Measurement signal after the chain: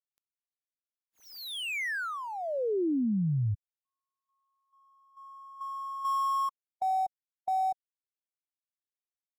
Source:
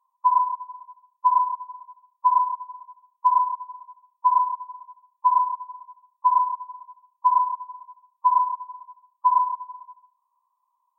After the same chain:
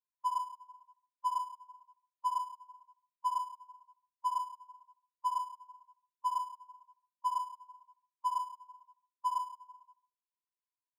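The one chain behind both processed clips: switching dead time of 0.059 ms; dynamic EQ 940 Hz, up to -7 dB, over -31 dBFS, Q 0.92; spectral expander 1.5:1; gain -7.5 dB

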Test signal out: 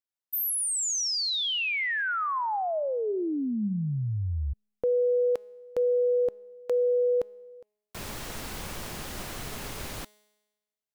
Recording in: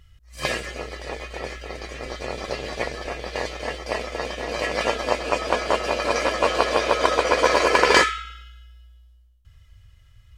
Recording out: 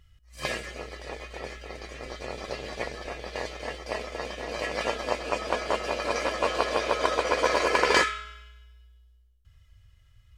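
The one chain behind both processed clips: resonator 210 Hz, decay 1.1 s, mix 50%

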